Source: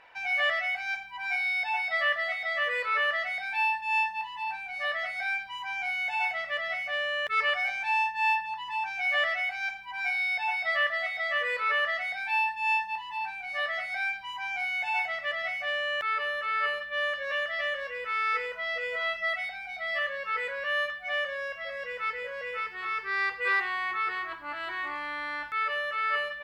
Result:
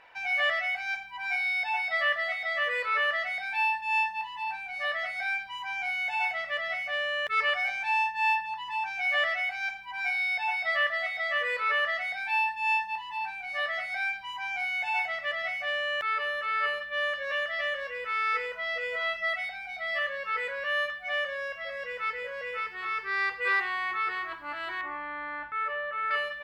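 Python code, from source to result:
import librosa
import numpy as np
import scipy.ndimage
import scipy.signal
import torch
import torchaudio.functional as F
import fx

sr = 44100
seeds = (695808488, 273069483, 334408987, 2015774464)

y = fx.lowpass(x, sr, hz=1800.0, slope=12, at=(24.81, 26.11))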